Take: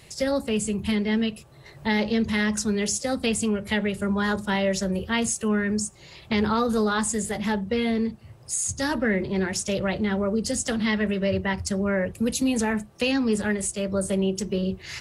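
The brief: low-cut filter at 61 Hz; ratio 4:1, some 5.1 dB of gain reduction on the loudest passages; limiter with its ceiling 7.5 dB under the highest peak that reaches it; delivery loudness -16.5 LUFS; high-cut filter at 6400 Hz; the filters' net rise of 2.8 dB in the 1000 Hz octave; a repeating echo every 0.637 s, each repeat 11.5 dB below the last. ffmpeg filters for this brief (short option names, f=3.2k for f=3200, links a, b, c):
-af "highpass=61,lowpass=6.4k,equalizer=f=1k:t=o:g=3.5,acompressor=threshold=-25dB:ratio=4,alimiter=limit=-21.5dB:level=0:latency=1,aecho=1:1:637|1274|1911:0.266|0.0718|0.0194,volume=14dB"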